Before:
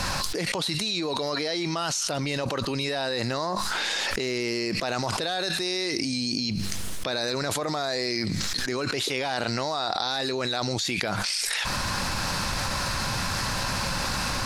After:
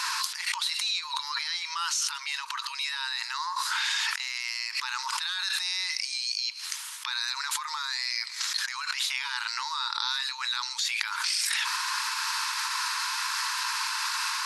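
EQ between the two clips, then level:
linear-phase brick-wall band-pass 860–12,000 Hz
0.0 dB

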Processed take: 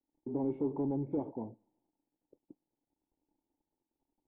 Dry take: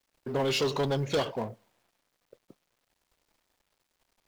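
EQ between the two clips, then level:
formant resonators in series u
+4.5 dB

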